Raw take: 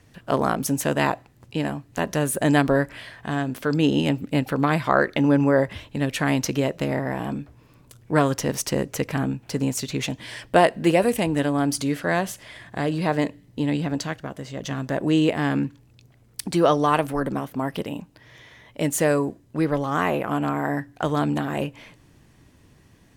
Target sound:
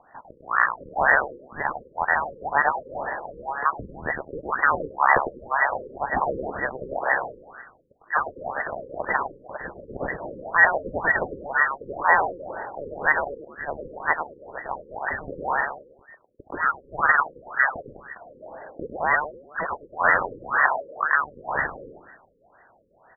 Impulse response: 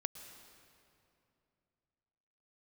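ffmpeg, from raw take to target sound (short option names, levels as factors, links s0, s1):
-filter_complex "[0:a]asplit=2[s0][s1];[s1]asplit=5[s2][s3][s4][s5][s6];[s2]adelay=102,afreqshift=100,volume=0.531[s7];[s3]adelay=204,afreqshift=200,volume=0.224[s8];[s4]adelay=306,afreqshift=300,volume=0.0933[s9];[s5]adelay=408,afreqshift=400,volume=0.0394[s10];[s6]adelay=510,afreqshift=500,volume=0.0166[s11];[s7][s8][s9][s10][s11]amix=inputs=5:normalize=0[s12];[s0][s12]amix=inputs=2:normalize=0,lowpass=f=2200:t=q:w=0.5098,lowpass=f=2200:t=q:w=0.6013,lowpass=f=2200:t=q:w=0.9,lowpass=f=2200:t=q:w=2.563,afreqshift=-2600,alimiter=level_in=3.55:limit=0.891:release=50:level=0:latency=1,afftfilt=real='re*lt(b*sr/1024,540*pow(2000/540,0.5+0.5*sin(2*PI*2*pts/sr)))':imag='im*lt(b*sr/1024,540*pow(2000/540,0.5+0.5*sin(2*PI*2*pts/sr)))':win_size=1024:overlap=0.75"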